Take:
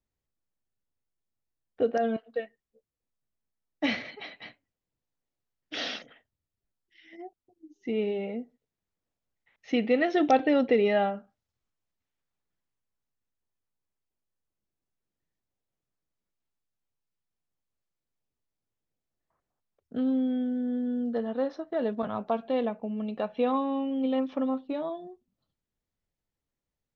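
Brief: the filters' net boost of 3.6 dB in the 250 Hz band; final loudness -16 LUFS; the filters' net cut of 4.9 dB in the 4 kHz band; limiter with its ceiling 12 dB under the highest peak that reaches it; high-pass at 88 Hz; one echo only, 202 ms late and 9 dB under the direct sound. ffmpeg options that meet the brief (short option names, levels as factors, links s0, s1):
-af "highpass=88,equalizer=f=250:t=o:g=4,equalizer=f=4000:t=o:g=-7,alimiter=limit=0.075:level=0:latency=1,aecho=1:1:202:0.355,volume=5.31"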